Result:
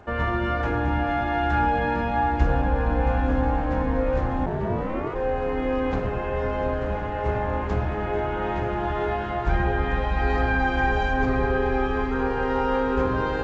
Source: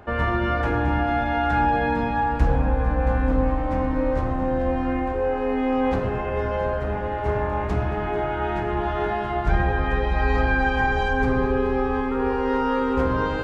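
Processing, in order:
feedback delay with all-pass diffusion 998 ms, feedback 61%, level −8 dB
0:04.45–0:05.14: ring modulation 86 Hz → 450 Hz
level −2 dB
G.722 64 kbit/s 16,000 Hz

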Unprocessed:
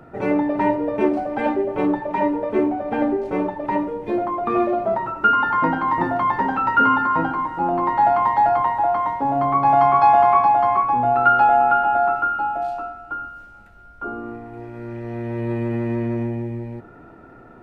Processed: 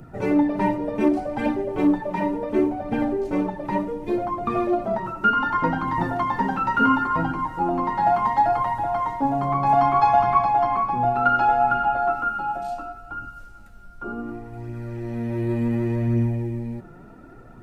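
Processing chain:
bass and treble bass +10 dB, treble +12 dB
flanger 0.68 Hz, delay 0.3 ms, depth 5.7 ms, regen +42%
parametric band 67 Hz −4.5 dB 1.3 octaves

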